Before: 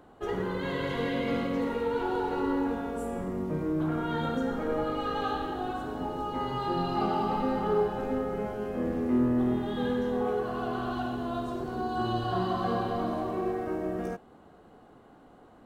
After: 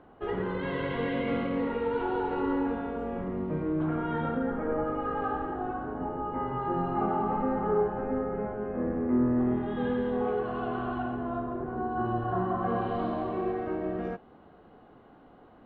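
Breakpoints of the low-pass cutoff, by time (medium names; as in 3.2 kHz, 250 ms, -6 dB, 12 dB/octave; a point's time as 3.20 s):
low-pass 24 dB/octave
3.68 s 3.1 kHz
4.82 s 1.9 kHz
9.21 s 1.9 kHz
10.03 s 3.1 kHz
10.58 s 3.1 kHz
11.48 s 1.9 kHz
12.58 s 1.9 kHz
13.02 s 3.6 kHz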